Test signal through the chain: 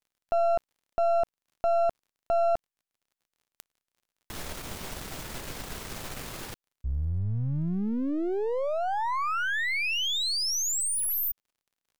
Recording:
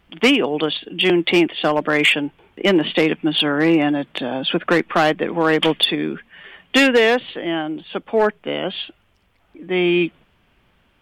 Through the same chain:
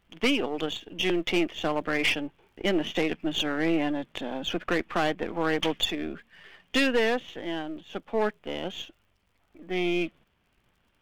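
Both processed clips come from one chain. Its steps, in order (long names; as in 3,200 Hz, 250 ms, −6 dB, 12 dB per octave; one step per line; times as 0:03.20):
gain on one half-wave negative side −7 dB
surface crackle 46 per second −49 dBFS
level −7.5 dB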